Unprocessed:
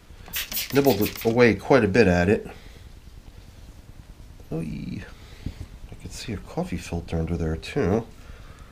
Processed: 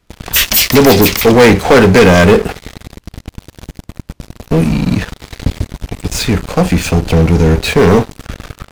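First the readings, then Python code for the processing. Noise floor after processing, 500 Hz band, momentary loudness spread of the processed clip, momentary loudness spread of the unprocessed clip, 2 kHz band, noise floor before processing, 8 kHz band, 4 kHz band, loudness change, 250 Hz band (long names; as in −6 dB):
−54 dBFS, +12.5 dB, 17 LU, 20 LU, +13.5 dB, −49 dBFS, +18.5 dB, +18.0 dB, +13.5 dB, +13.5 dB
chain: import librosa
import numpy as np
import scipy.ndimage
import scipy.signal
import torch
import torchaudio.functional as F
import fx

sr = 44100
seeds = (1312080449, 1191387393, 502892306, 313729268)

y = fx.leveller(x, sr, passes=5)
y = y * librosa.db_to_amplitude(1.5)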